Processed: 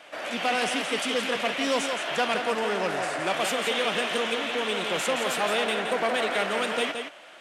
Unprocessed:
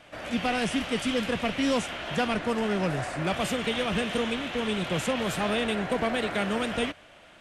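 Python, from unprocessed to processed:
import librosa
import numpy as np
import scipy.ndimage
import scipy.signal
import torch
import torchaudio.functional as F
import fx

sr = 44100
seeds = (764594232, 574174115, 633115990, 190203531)

p1 = np.clip(x, -10.0 ** (-30.0 / 20.0), 10.0 ** (-30.0 / 20.0))
p2 = x + (p1 * 10.0 ** (-11.0 / 20.0))
p3 = p2 + 10.0 ** (-7.0 / 20.0) * np.pad(p2, (int(171 * sr / 1000.0), 0))[:len(p2)]
p4 = 10.0 ** (-15.5 / 20.0) * np.tanh(p3 / 10.0 ** (-15.5 / 20.0))
p5 = scipy.signal.sosfilt(scipy.signal.butter(2, 400.0, 'highpass', fs=sr, output='sos'), p4)
y = p5 * 10.0 ** (2.5 / 20.0)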